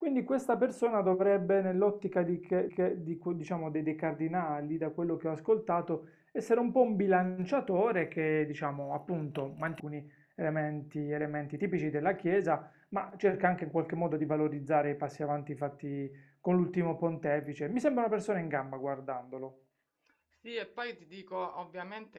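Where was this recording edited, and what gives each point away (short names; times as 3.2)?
2.69 repeat of the last 0.27 s
9.8 sound cut off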